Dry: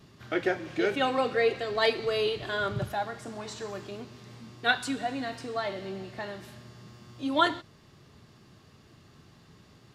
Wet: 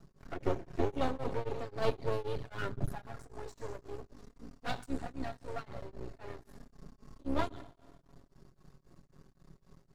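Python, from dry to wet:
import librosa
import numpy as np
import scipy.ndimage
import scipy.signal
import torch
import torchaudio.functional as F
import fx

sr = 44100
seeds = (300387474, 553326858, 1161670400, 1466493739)

y = fx.octave_divider(x, sr, octaves=2, level_db=-4.0)
y = fx.peak_eq(y, sr, hz=3000.0, db=-13.0, octaves=1.3)
y = fx.env_flanger(y, sr, rest_ms=6.2, full_db=-25.0)
y = fx.low_shelf(y, sr, hz=140.0, db=6.0)
y = y + 10.0 ** (-21.5 / 20.0) * np.pad(y, (int(125 * sr / 1000.0), 0))[:len(y)]
y = fx.rev_schroeder(y, sr, rt60_s=2.0, comb_ms=38, drr_db=18.5)
y = np.maximum(y, 0.0)
y = y + 0.32 * np.pad(y, (int(7.3 * sr / 1000.0), 0))[:len(y)]
y = y * np.abs(np.cos(np.pi * 3.8 * np.arange(len(y)) / sr))
y = F.gain(torch.from_numpy(y), 1.0).numpy()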